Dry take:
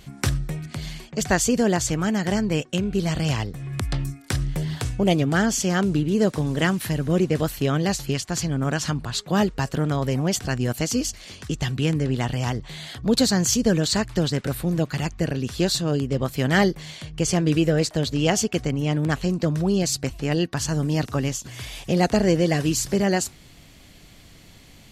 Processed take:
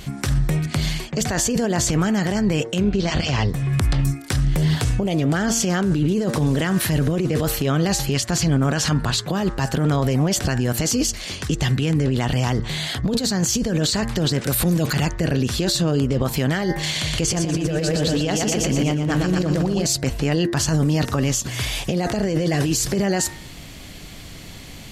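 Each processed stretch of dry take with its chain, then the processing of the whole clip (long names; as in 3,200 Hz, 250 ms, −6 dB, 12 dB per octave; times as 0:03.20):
0:02.83–0:03.49: low-pass filter 6,400 Hz 24 dB per octave + notch comb filter 160 Hz
0:14.41–0:14.93: high-shelf EQ 3,800 Hz +9 dB + transient designer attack −6 dB, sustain +9 dB + high-pass filter 45 Hz
0:16.83–0:19.85: repeating echo 120 ms, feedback 56%, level −3.5 dB + one half of a high-frequency compander encoder only
whole clip: hum removal 114.7 Hz, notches 18; compressor whose output falls as the input rises −25 dBFS, ratio −1; brickwall limiter −19 dBFS; level +7.5 dB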